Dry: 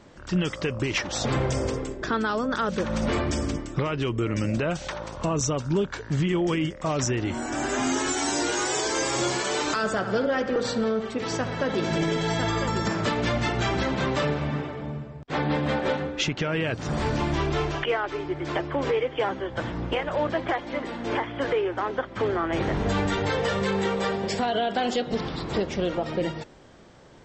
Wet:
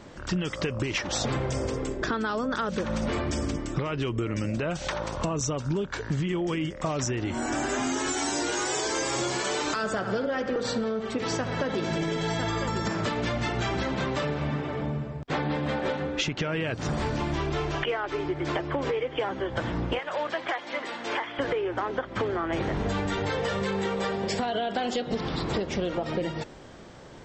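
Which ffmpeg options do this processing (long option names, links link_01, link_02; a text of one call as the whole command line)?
ffmpeg -i in.wav -filter_complex "[0:a]asettb=1/sr,asplit=3[link_01][link_02][link_03];[link_01]atrim=end=19.994[link_04];[link_02]atrim=start=19.99:end=21.39,asetpts=PTS-STARTPTS,afade=type=in:duration=0.004:curve=qsin,afade=type=out:start_time=1.396:duration=0.004:curve=qsin,highpass=frequency=1100:poles=1[link_05];[link_03]atrim=start=21.386[link_06];[link_04][link_05]acrossfade=duration=0.004:curve1=hsin:curve2=qsin[link_07];[link_07][link_06]acrossfade=duration=0.004:curve1=qsin:curve2=hsin,acompressor=threshold=-30dB:ratio=6,volume=4.5dB" out.wav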